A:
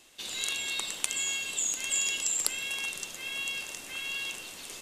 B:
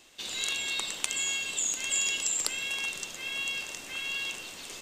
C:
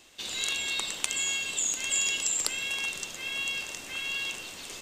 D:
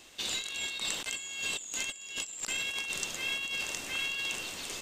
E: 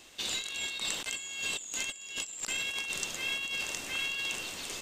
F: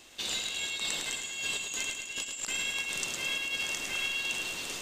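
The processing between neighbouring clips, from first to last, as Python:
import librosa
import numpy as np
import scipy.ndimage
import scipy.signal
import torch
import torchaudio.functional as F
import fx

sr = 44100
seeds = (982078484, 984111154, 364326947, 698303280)

y1 = fx.peak_eq(x, sr, hz=11000.0, db=-12.0, octaves=0.35)
y1 = F.gain(torch.from_numpy(y1), 1.5).numpy()
y2 = fx.peak_eq(y1, sr, hz=67.0, db=3.0, octaves=1.8)
y2 = F.gain(torch.from_numpy(y2), 1.0).numpy()
y3 = fx.over_compress(y2, sr, threshold_db=-34.0, ratio=-0.5)
y3 = F.gain(torch.from_numpy(y3), -1.0).numpy()
y4 = y3
y5 = fx.echo_feedback(y4, sr, ms=107, feedback_pct=57, wet_db=-5.5)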